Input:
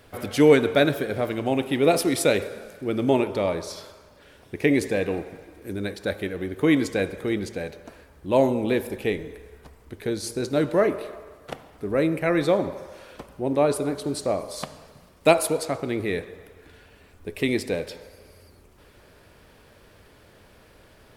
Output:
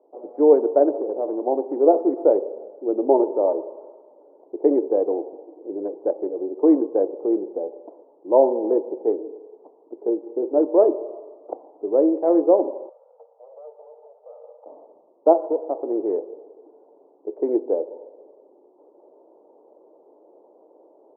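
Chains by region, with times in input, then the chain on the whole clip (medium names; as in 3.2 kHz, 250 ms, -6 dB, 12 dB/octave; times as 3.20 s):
0.93–1.42 s: waveshaping leveller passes 1 + compression 2.5:1, threshold -25 dBFS
12.89–14.66 s: comb filter that takes the minimum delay 2.3 ms + compression 5:1, threshold -35 dBFS + rippled Chebyshev high-pass 450 Hz, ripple 9 dB
whole clip: local Wiener filter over 25 samples; elliptic band-pass 320–900 Hz, stop band 60 dB; level rider gain up to 6.5 dB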